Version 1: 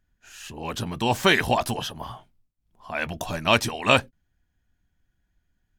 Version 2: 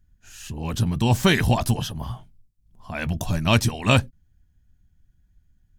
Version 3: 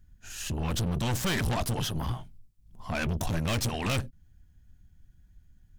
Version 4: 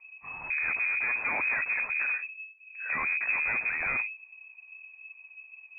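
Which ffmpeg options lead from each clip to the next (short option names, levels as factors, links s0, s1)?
-af "bass=f=250:g=15,treble=f=4000:g=6,volume=0.708"
-filter_complex "[0:a]asplit=2[s0][s1];[s1]acompressor=threshold=0.0447:ratio=6,volume=0.794[s2];[s0][s2]amix=inputs=2:normalize=0,aeval=exprs='(tanh(20*val(0)+0.45)-tanh(0.45))/20':c=same"
-filter_complex "[0:a]asplit=2[s0][s1];[s1]aeval=exprs='0.075*sin(PI/2*2.82*val(0)/0.075)':c=same,volume=0.266[s2];[s0][s2]amix=inputs=2:normalize=0,lowpass=f=2200:t=q:w=0.5098,lowpass=f=2200:t=q:w=0.6013,lowpass=f=2200:t=q:w=0.9,lowpass=f=2200:t=q:w=2.563,afreqshift=-2600,volume=0.841"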